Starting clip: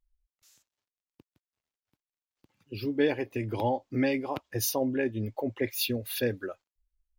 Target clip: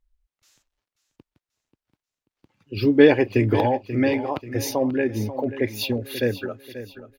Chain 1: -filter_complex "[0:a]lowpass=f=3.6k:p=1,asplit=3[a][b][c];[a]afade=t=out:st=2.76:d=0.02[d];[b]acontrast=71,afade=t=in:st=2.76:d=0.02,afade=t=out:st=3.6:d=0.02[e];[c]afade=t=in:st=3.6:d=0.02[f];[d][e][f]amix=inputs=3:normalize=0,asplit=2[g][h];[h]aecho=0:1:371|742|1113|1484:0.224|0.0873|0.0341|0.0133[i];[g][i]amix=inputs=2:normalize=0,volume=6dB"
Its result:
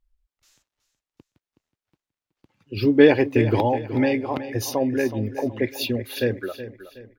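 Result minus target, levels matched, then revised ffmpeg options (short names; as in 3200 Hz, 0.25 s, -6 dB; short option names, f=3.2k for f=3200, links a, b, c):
echo 0.165 s early
-filter_complex "[0:a]lowpass=f=3.6k:p=1,asplit=3[a][b][c];[a]afade=t=out:st=2.76:d=0.02[d];[b]acontrast=71,afade=t=in:st=2.76:d=0.02,afade=t=out:st=3.6:d=0.02[e];[c]afade=t=in:st=3.6:d=0.02[f];[d][e][f]amix=inputs=3:normalize=0,asplit=2[g][h];[h]aecho=0:1:536|1072|1608|2144:0.224|0.0873|0.0341|0.0133[i];[g][i]amix=inputs=2:normalize=0,volume=6dB"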